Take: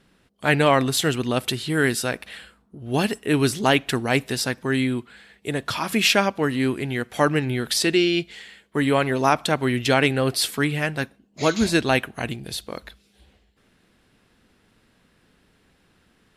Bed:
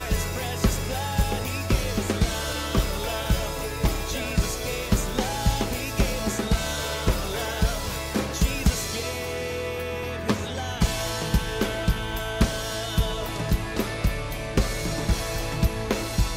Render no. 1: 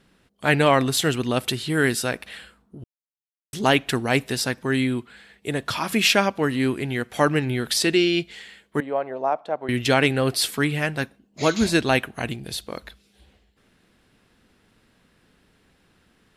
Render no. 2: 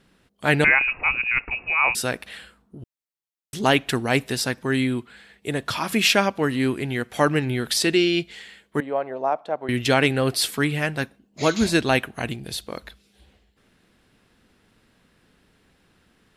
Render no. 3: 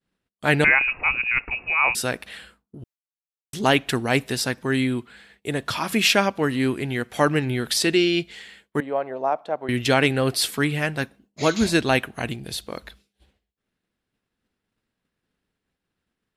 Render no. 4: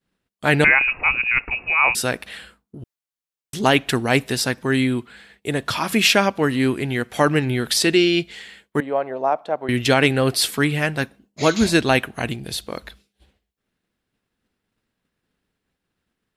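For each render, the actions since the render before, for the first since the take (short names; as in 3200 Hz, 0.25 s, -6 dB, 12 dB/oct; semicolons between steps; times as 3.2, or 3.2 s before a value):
2.84–3.53 mute; 8.8–9.69 band-pass 650 Hz, Q 2.4
0.64–1.95 inverted band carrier 2700 Hz
expander -48 dBFS
gain +3 dB; limiter -3 dBFS, peak gain reduction 2 dB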